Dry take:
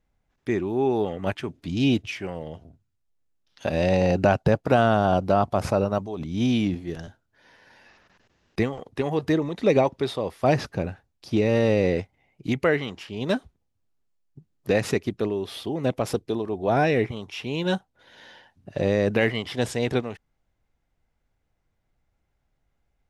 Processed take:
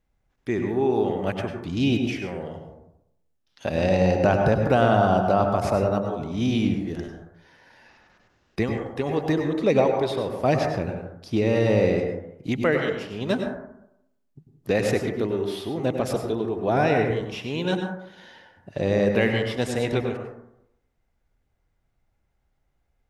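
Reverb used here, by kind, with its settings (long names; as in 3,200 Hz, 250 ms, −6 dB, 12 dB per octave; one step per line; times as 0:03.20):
dense smooth reverb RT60 0.79 s, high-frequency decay 0.3×, pre-delay 85 ms, DRR 3.5 dB
level −1 dB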